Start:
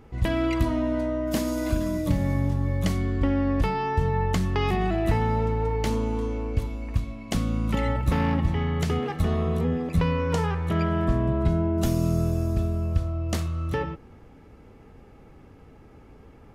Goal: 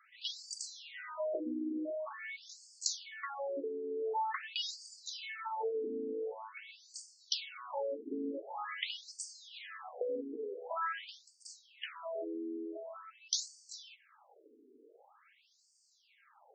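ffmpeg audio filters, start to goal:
-af "aemphasis=mode=production:type=riaa,afftfilt=real='re*between(b*sr/1024,310*pow(6400/310,0.5+0.5*sin(2*PI*0.46*pts/sr))/1.41,310*pow(6400/310,0.5+0.5*sin(2*PI*0.46*pts/sr))*1.41)':imag='im*between(b*sr/1024,310*pow(6400/310,0.5+0.5*sin(2*PI*0.46*pts/sr))/1.41,310*pow(6400/310,0.5+0.5*sin(2*PI*0.46*pts/sr))*1.41)':win_size=1024:overlap=0.75,volume=0.841"

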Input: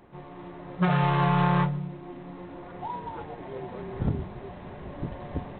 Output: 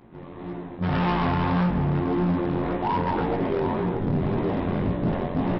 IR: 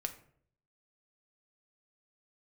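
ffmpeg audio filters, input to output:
-filter_complex "[0:a]equalizer=f=230:t=o:w=1.3:g=8.5,bandreject=f=47.62:t=h:w=4,bandreject=f=95.24:t=h:w=4,bandreject=f=142.86:t=h:w=4,bandreject=f=190.48:t=h:w=4,bandreject=f=238.1:t=h:w=4,bandreject=f=285.72:t=h:w=4,bandreject=f=333.34:t=h:w=4,bandreject=f=380.96:t=h:w=4,bandreject=f=428.58:t=h:w=4,bandreject=f=476.2:t=h:w=4,bandreject=f=523.82:t=h:w=4,bandreject=f=571.44:t=h:w=4,bandreject=f=619.06:t=h:w=4,bandreject=f=666.68:t=h:w=4,bandreject=f=714.3:t=h:w=4,bandreject=f=761.92:t=h:w=4,bandreject=f=809.54:t=h:w=4,bandreject=f=857.16:t=h:w=4,areverse,acompressor=threshold=0.02:ratio=4,areverse,asplit=2[s0][s1];[s1]adelay=751,lowpass=f=1800:p=1,volume=0.355,asplit=2[s2][s3];[s3]adelay=751,lowpass=f=1800:p=1,volume=0.4,asplit=2[s4][s5];[s5]adelay=751,lowpass=f=1800:p=1,volume=0.4,asplit=2[s6][s7];[s7]adelay=751,lowpass=f=1800:p=1,volume=0.4[s8];[s0][s2][s4][s6][s8]amix=inputs=5:normalize=0,tremolo=f=86:d=0.889,flanger=delay=17:depth=3.7:speed=1.8,aresample=11025,asoftclip=type=hard:threshold=0.0106,aresample=44100,dynaudnorm=f=190:g=7:m=5.01,volume=2.11"

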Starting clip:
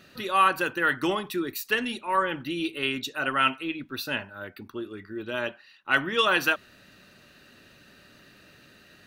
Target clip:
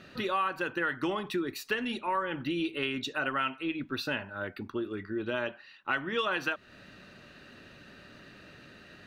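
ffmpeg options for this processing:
-af "aemphasis=mode=reproduction:type=50fm,acompressor=threshold=0.0251:ratio=4,volume=1.41"

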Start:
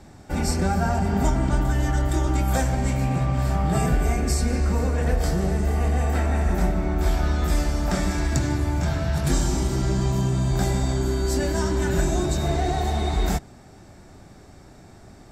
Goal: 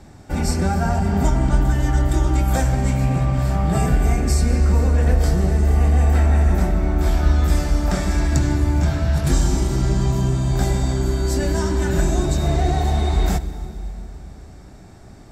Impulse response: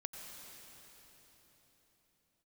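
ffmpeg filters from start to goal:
-filter_complex "[0:a]asplit=2[s0][s1];[1:a]atrim=start_sample=2205,asetrate=66150,aresample=44100,lowshelf=f=220:g=9.5[s2];[s1][s2]afir=irnorm=-1:irlink=0,volume=0.708[s3];[s0][s3]amix=inputs=2:normalize=0,volume=0.891"

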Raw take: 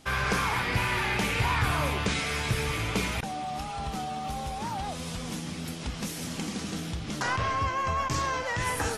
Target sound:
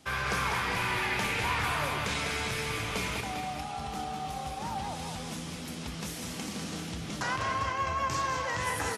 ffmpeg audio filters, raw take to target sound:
-filter_complex "[0:a]highpass=57,acrossover=split=480|820[s0][s1][s2];[s0]asoftclip=type=tanh:threshold=0.0282[s3];[s3][s1][s2]amix=inputs=3:normalize=0,aecho=1:1:199|400:0.473|0.335,volume=0.708"

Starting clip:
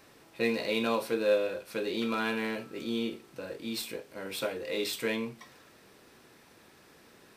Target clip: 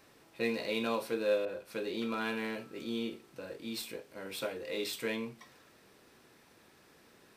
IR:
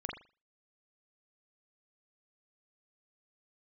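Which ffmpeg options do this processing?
-filter_complex "[0:a]asettb=1/sr,asplit=3[s0][s1][s2];[s0]atrim=end=1.454[s3];[s1]atrim=start=1.45:end=2.21,asetpts=PTS-STARTPTS,afade=t=in:d=0.004:c=qsin,afade=t=out:st=0.756:d=0.004:c=qsin,adynamicequalizer=threshold=0.00447:dfrequency=1700:dqfactor=0.7:tfrequency=1700:tqfactor=0.7:attack=5:release=100:ratio=0.375:range=2:mode=cutabove:tftype=highshelf[s4];[s2]atrim=start=2.206[s5];[s3][s4]acrossfade=d=0.004:c1=hsin:c2=qsin[s6];[s6][s5]acrossfade=d=0.004:c1=qsin:c2=hsin,volume=0.631"

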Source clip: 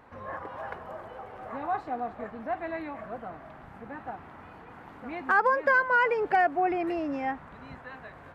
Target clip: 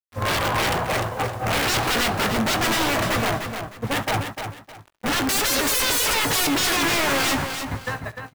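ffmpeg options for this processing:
-filter_complex "[0:a]agate=range=0.0316:threshold=0.00891:ratio=16:detection=peak,equalizer=f=110:w=2.3:g=13.5,asplit=2[s0][s1];[s1]alimiter=level_in=1.58:limit=0.0631:level=0:latency=1:release=115,volume=0.631,volume=0.891[s2];[s0][s2]amix=inputs=2:normalize=0,acontrast=75,aeval=exprs='(mod(11.2*val(0)+1,2)-1)/11.2':c=same,acrusher=bits=8:mix=0:aa=0.000001,volume=29.9,asoftclip=hard,volume=0.0335,asplit=2[s3][s4];[s4]adelay=18,volume=0.266[s5];[s3][s5]amix=inputs=2:normalize=0,asplit=2[s6][s7];[s7]aecho=0:1:69|300|610:0.126|0.422|0.112[s8];[s6][s8]amix=inputs=2:normalize=0,volume=2.66"

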